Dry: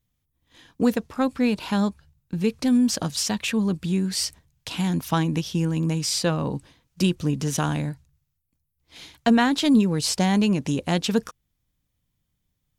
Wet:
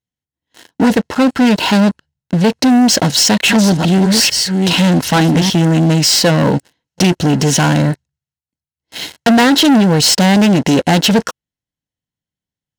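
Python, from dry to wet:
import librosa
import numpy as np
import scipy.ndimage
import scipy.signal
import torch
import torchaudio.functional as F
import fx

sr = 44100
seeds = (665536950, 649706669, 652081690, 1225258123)

y = fx.reverse_delay(x, sr, ms=433, wet_db=-7, at=(3.0, 5.5))
y = scipy.signal.sosfilt(scipy.signal.butter(2, 7700.0, 'lowpass', fs=sr, output='sos'), y)
y = fx.low_shelf(y, sr, hz=220.0, db=-5.0)
y = fx.leveller(y, sr, passes=5)
y = fx.notch_comb(y, sr, f0_hz=1200.0)
y = fx.doppler_dist(y, sr, depth_ms=0.15)
y = F.gain(torch.from_numpy(y), 3.5).numpy()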